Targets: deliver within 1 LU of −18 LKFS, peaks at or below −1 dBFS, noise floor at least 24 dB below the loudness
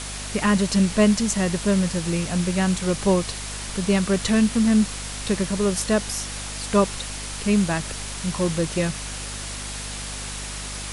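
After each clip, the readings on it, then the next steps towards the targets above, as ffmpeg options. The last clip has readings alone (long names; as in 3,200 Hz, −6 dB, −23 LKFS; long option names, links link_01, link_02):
mains hum 50 Hz; hum harmonics up to 250 Hz; level of the hum −34 dBFS; background noise floor −33 dBFS; target noise floor −47 dBFS; integrated loudness −23.0 LKFS; sample peak −7.0 dBFS; target loudness −18.0 LKFS
→ -af "bandreject=frequency=50:width_type=h:width=4,bandreject=frequency=100:width_type=h:width=4,bandreject=frequency=150:width_type=h:width=4,bandreject=frequency=200:width_type=h:width=4,bandreject=frequency=250:width_type=h:width=4"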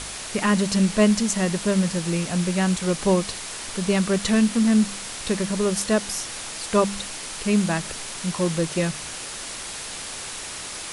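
mains hum none found; background noise floor −34 dBFS; target noise floor −48 dBFS
→ -af "afftdn=noise_reduction=14:noise_floor=-34"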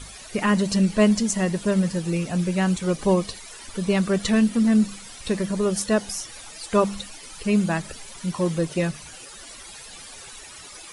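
background noise floor −42 dBFS; target noise floor −47 dBFS
→ -af "afftdn=noise_reduction=6:noise_floor=-42"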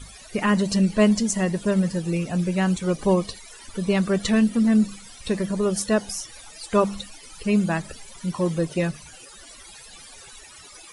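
background noise floor −45 dBFS; target noise floor −47 dBFS
→ -af "afftdn=noise_reduction=6:noise_floor=-45"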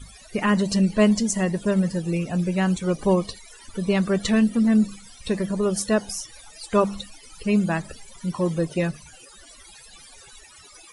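background noise floor −48 dBFS; integrated loudness −23.0 LKFS; sample peak −7.0 dBFS; target loudness −18.0 LKFS
→ -af "volume=5dB"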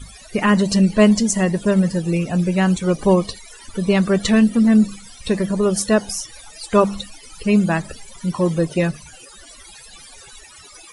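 integrated loudness −18.0 LKFS; sample peak −2.0 dBFS; background noise floor −43 dBFS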